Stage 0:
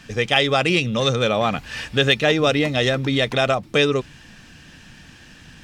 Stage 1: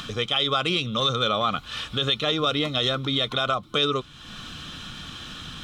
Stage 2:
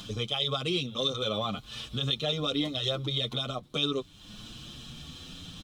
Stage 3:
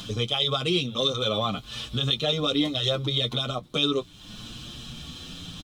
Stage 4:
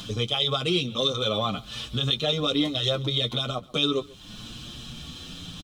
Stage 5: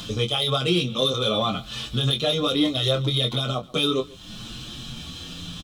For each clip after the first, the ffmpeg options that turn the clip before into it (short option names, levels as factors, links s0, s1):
-af "superequalizer=10b=3.16:11b=0.631:13b=3.16,alimiter=limit=0.501:level=0:latency=1:release=25,acompressor=mode=upward:threshold=0.1:ratio=2.5,volume=0.473"
-filter_complex "[0:a]equalizer=f=1500:w=0.97:g=-12,aeval=exprs='sgn(val(0))*max(abs(val(0))-0.00106,0)':c=same,asplit=2[s0][s1];[s1]adelay=7.1,afreqshift=0.7[s2];[s0][s2]amix=inputs=2:normalize=1"
-filter_complex "[0:a]asplit=2[s0][s1];[s1]adelay=17,volume=0.224[s2];[s0][s2]amix=inputs=2:normalize=0,volume=1.68"
-af "aecho=1:1:136:0.075"
-filter_complex "[0:a]acrossover=split=1600[s0][s1];[s1]asoftclip=type=tanh:threshold=0.0891[s2];[s0][s2]amix=inputs=2:normalize=0,asplit=2[s3][s4];[s4]adelay=23,volume=0.473[s5];[s3][s5]amix=inputs=2:normalize=0,volume=1.33"